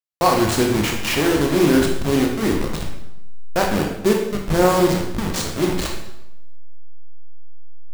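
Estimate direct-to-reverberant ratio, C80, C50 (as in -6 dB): 0.5 dB, 7.0 dB, 4.0 dB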